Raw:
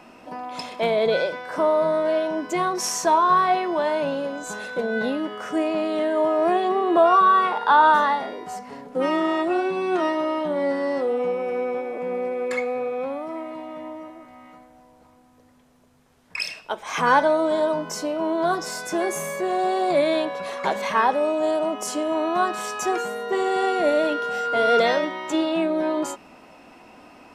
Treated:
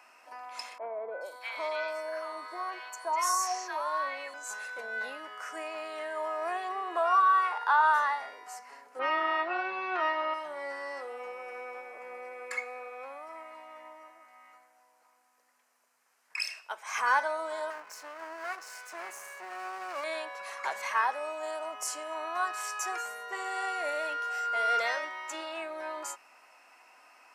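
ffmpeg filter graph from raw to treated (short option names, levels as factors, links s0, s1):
-filter_complex "[0:a]asettb=1/sr,asplit=3[s0][s1][s2];[s0]atrim=end=0.784[s3];[s1]atrim=start=0.78:end=4.34,asetpts=PTS-STARTPTS,afade=t=in:d=0.004:c=qsin,afade=t=out:st=3.556:d=0.004:c=qsin,highpass=f=220:w=0.5412,highpass=f=220:w=1.3066,aeval=exprs='val(0)+0.00355*sin(2*PI*4400*n/s)':c=same,acrossover=split=1200|5000[s4][s5][s6];[s6]adelay=430[s7];[s5]adelay=630[s8];[s4][s8][s7]amix=inputs=3:normalize=0,atrim=end_sample=156996[s9];[s2]atrim=start=4.336[s10];[s3][s9]acrossfade=d=0.004:c1=hsin:c2=qsin[s11];[s11][s10]acrossfade=d=0.004:c1=qsin:c2=hsin,asettb=1/sr,asplit=3[s12][s13][s14];[s12]atrim=end=8.994[s15];[s13]atrim=start=8.99:end=10.34,asetpts=PTS-STARTPTS,afade=t=in:d=0.004:c=qsin,afade=t=out:st=1.346:d=0.004:c=qsin,lowpass=f=4000:w=0.5412,lowpass=f=4000:w=1.3066,acontrast=27[s16];[s14]atrim=start=10.336[s17];[s15][s16]acrossfade=d=0.004:c1=hsin:c2=qsin[s18];[s18][s17]acrossfade=d=0.004:c1=qsin:c2=hsin,asettb=1/sr,asplit=3[s19][s20][s21];[s19]atrim=end=17.704[s22];[s20]atrim=start=17.7:end=20.04,asetpts=PTS-STARTPTS,afade=t=in:d=0.004:c=qsin,afade=t=out:st=2.336:d=0.004:c=qsin,highshelf=f=3700:g=-9,aeval=exprs='max(val(0),0)':c=same[s23];[s21]atrim=start=20.036[s24];[s22][s23]acrossfade=d=0.004:c1=hsin:c2=qsin[s25];[s25][s24]acrossfade=d=0.004:c1=qsin:c2=hsin,highpass=1200,equalizer=f=3500:t=o:w=0.51:g=-11,volume=0.708"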